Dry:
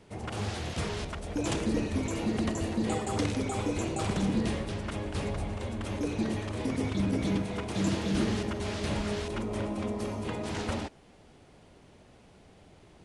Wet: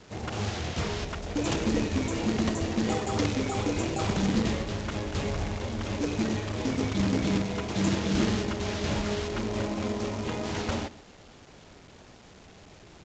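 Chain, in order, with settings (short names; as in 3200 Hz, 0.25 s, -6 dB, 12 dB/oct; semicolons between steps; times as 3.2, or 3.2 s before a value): echo 0.133 s -18.5 dB; companded quantiser 4-bit; gain +2 dB; A-law 128 kbps 16000 Hz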